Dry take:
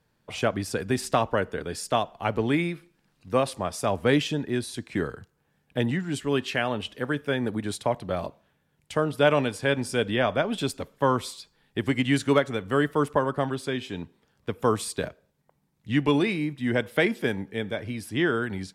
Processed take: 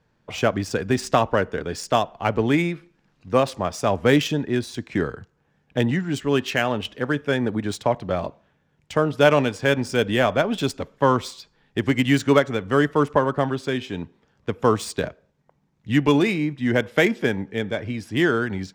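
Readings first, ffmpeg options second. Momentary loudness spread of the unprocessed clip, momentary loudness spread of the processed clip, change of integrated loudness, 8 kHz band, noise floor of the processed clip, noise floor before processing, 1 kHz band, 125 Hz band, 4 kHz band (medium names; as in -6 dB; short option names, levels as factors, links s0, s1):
9 LU, 9 LU, +4.5 dB, +1.5 dB, -67 dBFS, -71 dBFS, +4.5 dB, +4.5 dB, +3.5 dB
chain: -af "adynamicsmooth=sensitivity=4.5:basefreq=4500,aexciter=amount=2.2:drive=1.2:freq=5600,volume=1.68"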